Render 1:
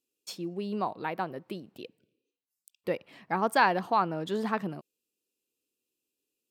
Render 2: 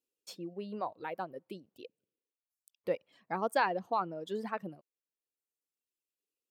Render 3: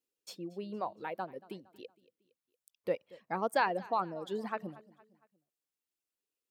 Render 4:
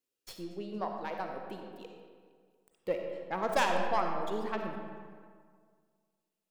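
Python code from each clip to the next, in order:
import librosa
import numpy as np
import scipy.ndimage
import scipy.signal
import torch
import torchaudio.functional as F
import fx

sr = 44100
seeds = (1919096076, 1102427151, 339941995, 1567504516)

y1 = fx.dereverb_blind(x, sr, rt60_s=1.6)
y1 = fx.peak_eq(y1, sr, hz=540.0, db=6.5, octaves=0.64)
y1 = F.gain(torch.from_numpy(y1), -7.0).numpy()
y2 = fx.echo_feedback(y1, sr, ms=231, feedback_pct=47, wet_db=-21.0)
y3 = fx.tracing_dist(y2, sr, depth_ms=0.17)
y3 = fx.rev_freeverb(y3, sr, rt60_s=1.9, hf_ratio=0.55, predelay_ms=15, drr_db=2.5)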